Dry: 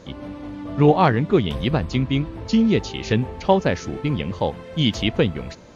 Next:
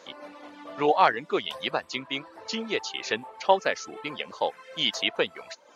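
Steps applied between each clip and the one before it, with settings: reverb removal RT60 0.59 s; high-pass 630 Hz 12 dB/octave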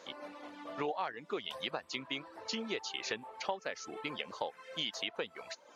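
compression 6:1, threshold -30 dBFS, peak gain reduction 15.5 dB; trim -3.5 dB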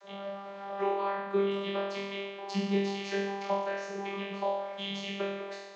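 flutter echo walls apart 4.1 m, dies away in 1.1 s; vocoder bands 32, saw 198 Hz; trim +2.5 dB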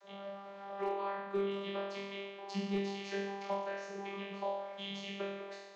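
hard clipper -22 dBFS, distortion -26 dB; trim -6 dB

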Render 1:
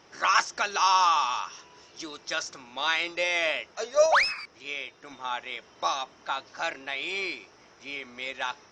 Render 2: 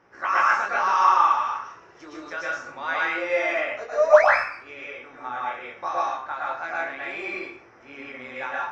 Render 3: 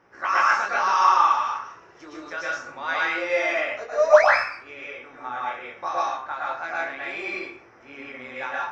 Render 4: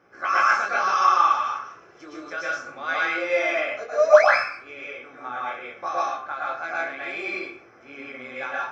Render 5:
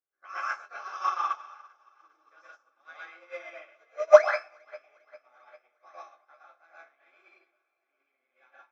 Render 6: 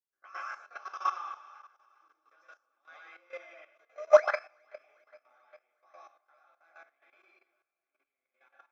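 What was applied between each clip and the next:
resonant high shelf 2.5 kHz -11.5 dB, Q 1.5; chorus 0.67 Hz, delay 17 ms, depth 6.6 ms; plate-style reverb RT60 0.52 s, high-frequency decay 0.8×, pre-delay 100 ms, DRR -5 dB
dynamic bell 4.8 kHz, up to +6 dB, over -43 dBFS, Q 1.2
comb of notches 930 Hz; trim +1 dB
high-pass 420 Hz 12 dB/octave; on a send: echo whose repeats swap between lows and highs 200 ms, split 840 Hz, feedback 86%, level -10 dB; on the sum: upward expansion 2.5:1, over -37 dBFS; trim +1 dB
level held to a coarse grid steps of 13 dB

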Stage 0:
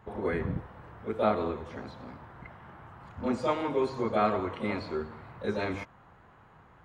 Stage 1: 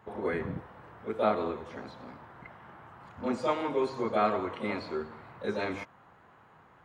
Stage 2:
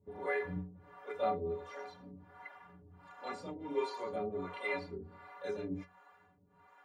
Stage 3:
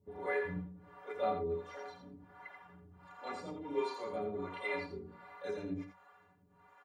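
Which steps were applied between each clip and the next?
high-pass 190 Hz 6 dB/octave
inharmonic resonator 86 Hz, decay 0.42 s, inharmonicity 0.03; harmonic tremolo 1.4 Hz, depth 100%, crossover 410 Hz; trim +9.5 dB
delay 84 ms -7 dB; trim -1 dB

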